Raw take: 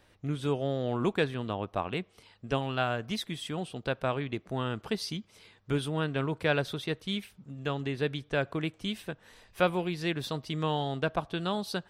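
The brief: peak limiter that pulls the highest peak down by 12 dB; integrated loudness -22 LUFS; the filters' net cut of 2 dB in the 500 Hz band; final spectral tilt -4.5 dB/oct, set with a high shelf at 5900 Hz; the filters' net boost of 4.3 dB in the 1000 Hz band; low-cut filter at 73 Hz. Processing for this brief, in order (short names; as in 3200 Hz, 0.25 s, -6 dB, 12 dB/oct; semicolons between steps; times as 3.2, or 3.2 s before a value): HPF 73 Hz; bell 500 Hz -4.5 dB; bell 1000 Hz +7.5 dB; high shelf 5900 Hz -8 dB; gain +13 dB; limiter -8.5 dBFS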